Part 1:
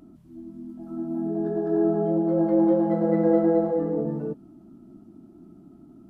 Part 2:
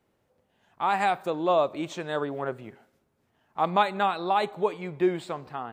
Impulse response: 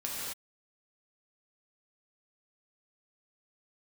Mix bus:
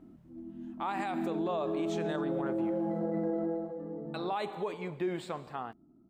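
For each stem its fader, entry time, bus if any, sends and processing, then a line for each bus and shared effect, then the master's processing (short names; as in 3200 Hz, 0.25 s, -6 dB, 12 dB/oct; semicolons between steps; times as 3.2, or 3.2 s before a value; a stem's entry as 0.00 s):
3.46 s -4.5 dB -> 3.68 s -13 dB, 0.00 s, no send, echo send -21 dB, low-pass opened by the level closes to 1500 Hz; limiter -20 dBFS, peak gain reduction 11 dB
-4.5 dB, 0.00 s, muted 3.32–4.14, send -18 dB, no echo send, dry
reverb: on, pre-delay 3 ms
echo: echo 1.068 s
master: limiter -25 dBFS, peak gain reduction 10 dB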